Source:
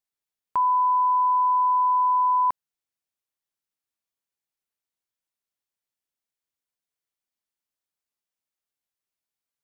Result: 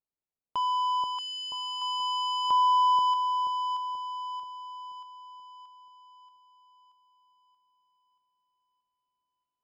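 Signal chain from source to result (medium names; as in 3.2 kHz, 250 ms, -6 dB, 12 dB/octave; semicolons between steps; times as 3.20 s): local Wiener filter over 25 samples; saturation -25.5 dBFS, distortion -16 dB; on a send: two-band feedback delay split 1 kHz, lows 482 ms, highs 630 ms, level -3 dB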